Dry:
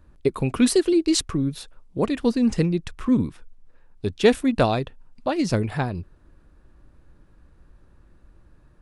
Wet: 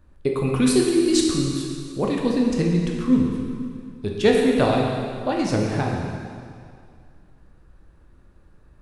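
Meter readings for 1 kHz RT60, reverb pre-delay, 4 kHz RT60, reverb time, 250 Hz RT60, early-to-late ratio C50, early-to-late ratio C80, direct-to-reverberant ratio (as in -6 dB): 2.2 s, 5 ms, 2.1 s, 2.2 s, 2.2 s, 1.0 dB, 2.5 dB, -1.0 dB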